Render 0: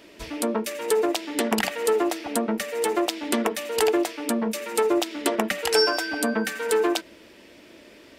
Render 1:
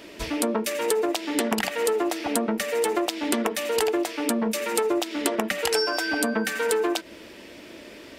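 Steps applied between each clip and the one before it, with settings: compression 5:1, threshold -27 dBFS, peak gain reduction 11 dB; trim +5.5 dB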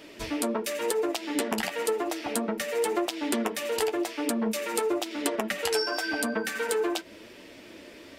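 flange 0.94 Hz, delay 6.3 ms, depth 6.3 ms, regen -34%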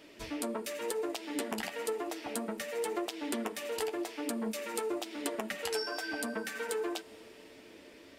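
reverberation RT60 5.0 s, pre-delay 4 ms, DRR 18 dB; trim -7.5 dB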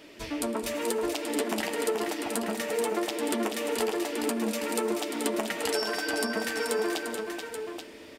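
multi-tap echo 109/146/175/219/432/831 ms -19.5/-19/-18/-12/-6/-8 dB; trim +5 dB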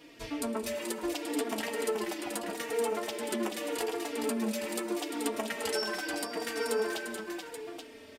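endless flanger 3.7 ms -0.79 Hz; trim -1 dB

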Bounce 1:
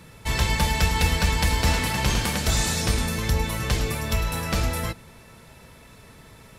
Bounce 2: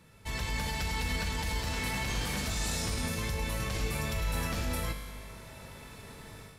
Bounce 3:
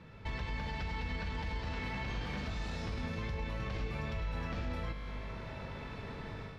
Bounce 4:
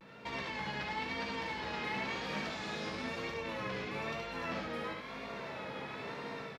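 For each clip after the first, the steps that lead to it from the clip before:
level rider gain up to 12 dB; peak limiter -13 dBFS, peak gain reduction 11.5 dB; feedback comb 50 Hz, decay 2 s, harmonics all, mix 80%
compression 3:1, threshold -43 dBFS, peak gain reduction 11.5 dB; distance through air 240 m; trim +6 dB
high-pass 250 Hz 12 dB/octave; vibrato 1 Hz 83 cents; on a send: early reflections 15 ms -5.5 dB, 72 ms -3.5 dB; on the sum: trim +2 dB

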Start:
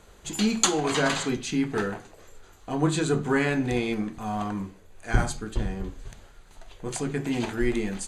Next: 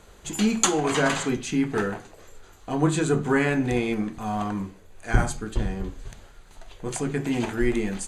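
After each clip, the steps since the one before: dynamic bell 4.2 kHz, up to -6 dB, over -47 dBFS, Q 2; trim +2 dB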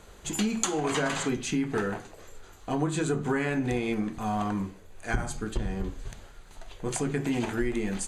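compression 6:1, threshold -24 dBFS, peak gain reduction 11.5 dB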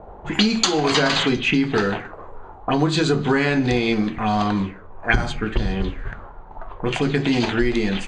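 touch-sensitive low-pass 700–4600 Hz up, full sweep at -25 dBFS; trim +8.5 dB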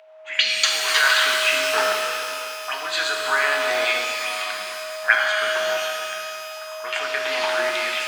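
whistle 630 Hz -22 dBFS; LFO high-pass saw down 0.52 Hz 920–2600 Hz; pitch-shifted reverb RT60 2.8 s, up +12 st, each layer -8 dB, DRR 0.5 dB; trim -2.5 dB

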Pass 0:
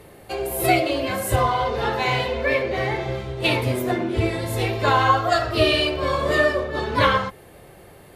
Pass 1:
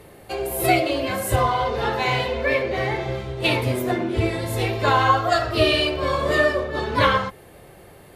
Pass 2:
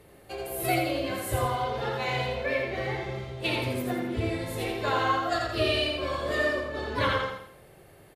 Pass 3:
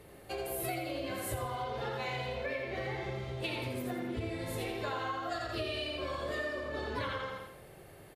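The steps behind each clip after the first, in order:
no audible change
peaking EQ 940 Hz -2.5 dB 0.52 oct; on a send: feedback delay 84 ms, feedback 40%, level -4 dB; on the sum: trim -8.5 dB
compression, threshold -34 dBFS, peak gain reduction 12.5 dB

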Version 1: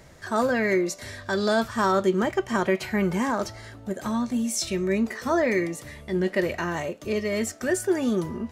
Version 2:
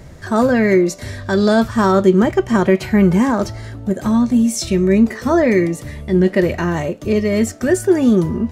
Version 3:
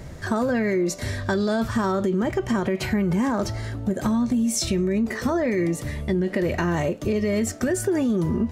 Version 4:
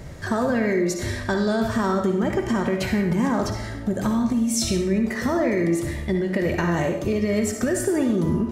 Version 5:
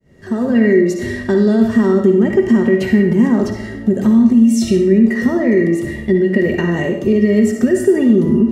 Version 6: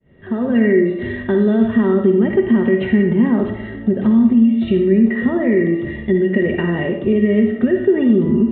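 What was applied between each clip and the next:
bass shelf 370 Hz +11 dB; trim +4.5 dB
peak limiter -12 dBFS, peak gain reduction 10.5 dB; compression, threshold -19 dBFS, peak gain reduction 5 dB
reverberation RT60 0.65 s, pre-delay 47 ms, DRR 4.5 dB
fade-in on the opening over 0.59 s; small resonant body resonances 230/380/1900/2800 Hz, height 15 dB, ringing for 40 ms; trim -2.5 dB
resampled via 8 kHz; trim -2 dB

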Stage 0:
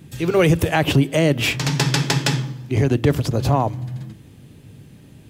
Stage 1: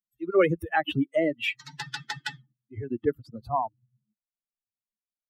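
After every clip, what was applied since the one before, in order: expander on every frequency bin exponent 3; three-band isolator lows -13 dB, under 260 Hz, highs -17 dB, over 3.2 kHz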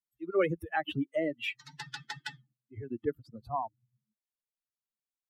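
wow and flutter 18 cents; trim -6.5 dB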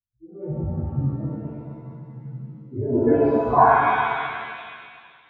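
low-pass sweep 100 Hz -> 1.5 kHz, 2.29–3.23 s; pitch-shifted reverb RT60 2 s, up +7 st, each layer -8 dB, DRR -11.5 dB; trim +6.5 dB

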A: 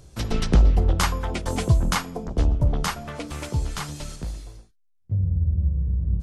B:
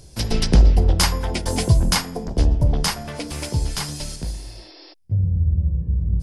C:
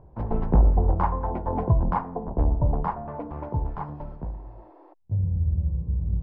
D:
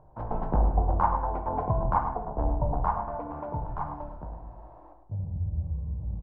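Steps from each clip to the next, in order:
de-hum 67.07 Hz, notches 31; spectral replace 4.39–4.91 s, 290–5600 Hz before; graphic EQ with 31 bands 1.25 kHz -8 dB, 5 kHz +9 dB, 10 kHz +9 dB; trim +3.5 dB
four-pole ladder low-pass 1.1 kHz, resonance 55%; trim +5 dB
high-order bell 950 Hz +8 dB; on a send: delay 105 ms -10.5 dB; on the sum: simulated room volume 290 m³, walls mixed, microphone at 0.52 m; trim -7.5 dB

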